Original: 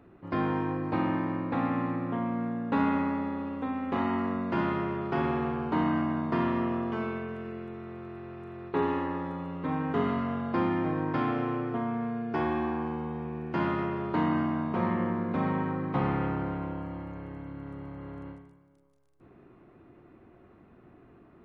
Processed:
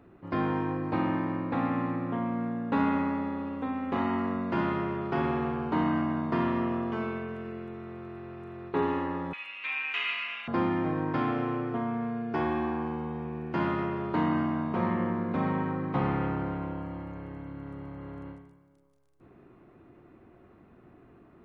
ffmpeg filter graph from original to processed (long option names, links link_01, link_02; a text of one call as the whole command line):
ffmpeg -i in.wav -filter_complex "[0:a]asettb=1/sr,asplit=3[link_01][link_02][link_03];[link_01]atrim=end=9.334[link_04];[link_02]atrim=start=9.33:end=10.48,asetpts=PTS-STARTPTS,afade=type=in:duration=0.004:curve=qsin,afade=type=out:start_time=1.146:duration=0.004:curve=qsin,acontrast=34,highpass=frequency=2500:width_type=q:width=12[link_05];[link_03]atrim=start=10.476[link_06];[link_04][link_05]acrossfade=duration=0.004:curve1=hsin:curve2=qsin[link_07];[link_07][link_06]acrossfade=duration=0.004:curve1=qsin:curve2=hsin" out.wav